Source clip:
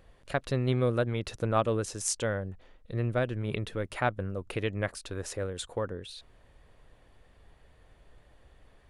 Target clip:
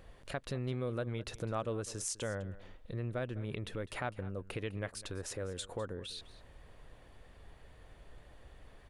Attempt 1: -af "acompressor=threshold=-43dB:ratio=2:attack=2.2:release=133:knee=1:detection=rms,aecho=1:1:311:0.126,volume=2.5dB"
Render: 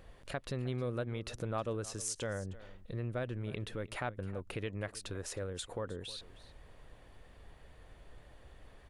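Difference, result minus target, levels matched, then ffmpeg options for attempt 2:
echo 0.108 s late
-af "acompressor=threshold=-43dB:ratio=2:attack=2.2:release=133:knee=1:detection=rms,aecho=1:1:203:0.126,volume=2.5dB"

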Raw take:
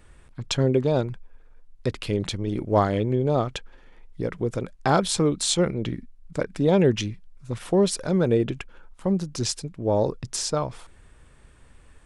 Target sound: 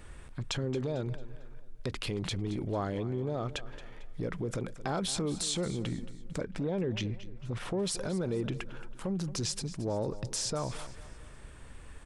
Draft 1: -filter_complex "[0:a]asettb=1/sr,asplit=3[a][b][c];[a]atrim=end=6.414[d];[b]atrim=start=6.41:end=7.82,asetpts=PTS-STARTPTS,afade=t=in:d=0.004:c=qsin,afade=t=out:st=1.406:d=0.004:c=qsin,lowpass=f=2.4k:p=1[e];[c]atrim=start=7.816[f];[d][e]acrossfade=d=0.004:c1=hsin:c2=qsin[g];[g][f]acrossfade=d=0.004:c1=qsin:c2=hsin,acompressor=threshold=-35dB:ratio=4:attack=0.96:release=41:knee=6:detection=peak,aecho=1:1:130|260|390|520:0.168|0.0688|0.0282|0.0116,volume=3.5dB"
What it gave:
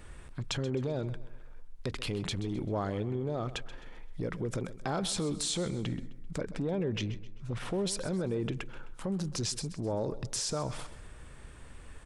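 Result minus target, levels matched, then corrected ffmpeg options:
echo 94 ms early
-filter_complex "[0:a]asettb=1/sr,asplit=3[a][b][c];[a]atrim=end=6.414[d];[b]atrim=start=6.41:end=7.82,asetpts=PTS-STARTPTS,afade=t=in:d=0.004:c=qsin,afade=t=out:st=1.406:d=0.004:c=qsin,lowpass=f=2.4k:p=1[e];[c]atrim=start=7.816[f];[d][e]acrossfade=d=0.004:c1=hsin:c2=qsin[g];[g][f]acrossfade=d=0.004:c1=qsin:c2=hsin,acompressor=threshold=-35dB:ratio=4:attack=0.96:release=41:knee=6:detection=peak,aecho=1:1:224|448|672|896:0.168|0.0688|0.0282|0.0116,volume=3.5dB"

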